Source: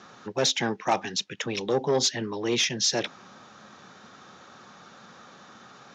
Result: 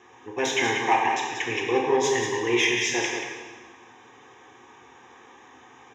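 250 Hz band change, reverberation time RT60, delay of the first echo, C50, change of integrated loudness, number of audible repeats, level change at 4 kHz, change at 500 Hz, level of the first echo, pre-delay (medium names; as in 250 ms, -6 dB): +2.0 dB, 1.4 s, 184 ms, 0.5 dB, +2.5 dB, 1, -2.5 dB, +3.0 dB, -7.0 dB, 6 ms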